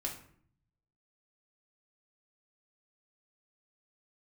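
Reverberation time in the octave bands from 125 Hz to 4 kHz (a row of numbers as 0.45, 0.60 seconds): 1.2, 0.85, 0.60, 0.55, 0.50, 0.35 seconds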